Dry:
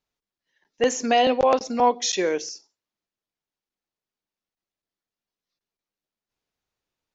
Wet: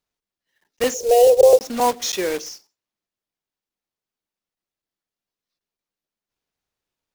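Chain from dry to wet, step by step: block floating point 3-bit; 0.94–1.59 EQ curve 140 Hz 0 dB, 230 Hz -28 dB, 450 Hz +14 dB, 1300 Hz -20 dB, 5900 Hz +1 dB

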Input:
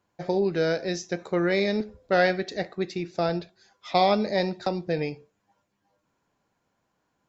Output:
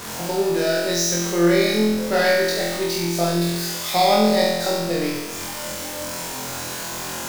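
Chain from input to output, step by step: zero-crossing step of -29.5 dBFS; tone controls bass -2 dB, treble +8 dB; flutter echo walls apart 4 m, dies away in 1.1 s; gain -2 dB

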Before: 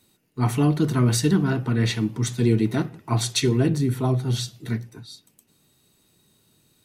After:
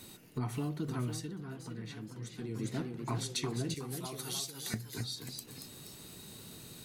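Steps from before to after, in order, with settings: 3.74–4.74 differentiator; compressor 5:1, threshold -49 dBFS, peak gain reduction 29.5 dB; echoes that change speed 0.532 s, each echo +1 st, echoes 3, each echo -6 dB; 1–2.66 dip -8 dB, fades 0.31 s; gain +11 dB

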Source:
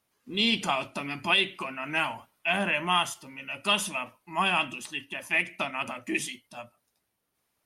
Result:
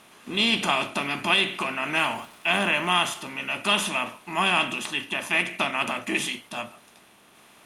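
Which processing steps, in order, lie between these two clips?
per-bin compression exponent 0.6; 1.94–2.95 crackle 510/s -42 dBFS

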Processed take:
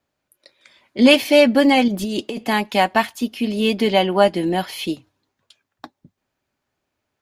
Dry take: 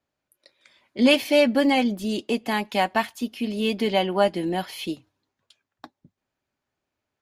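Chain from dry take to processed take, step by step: 1.88–2.44 negative-ratio compressor -29 dBFS, ratio -1; gain +5.5 dB

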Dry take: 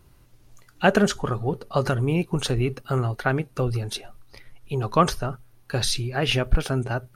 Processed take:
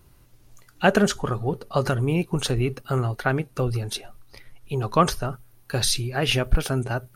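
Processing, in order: high shelf 9100 Hz +5 dB, from 5.22 s +10 dB

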